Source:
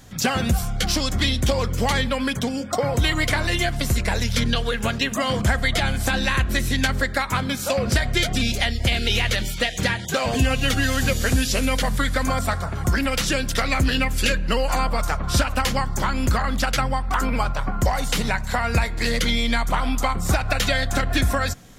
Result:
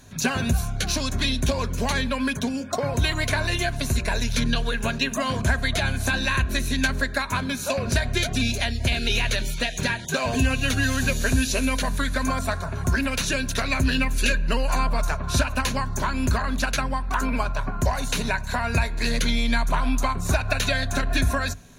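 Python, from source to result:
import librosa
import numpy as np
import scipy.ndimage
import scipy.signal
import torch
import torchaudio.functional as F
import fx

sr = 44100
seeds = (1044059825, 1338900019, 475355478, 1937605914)

y = fx.ripple_eq(x, sr, per_octave=1.5, db=8)
y = y * 10.0 ** (-3.0 / 20.0)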